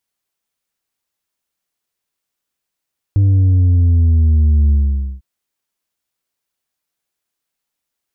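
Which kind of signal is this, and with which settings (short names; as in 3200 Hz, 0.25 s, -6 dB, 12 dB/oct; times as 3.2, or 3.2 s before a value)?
sub drop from 100 Hz, over 2.05 s, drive 4 dB, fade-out 0.50 s, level -9 dB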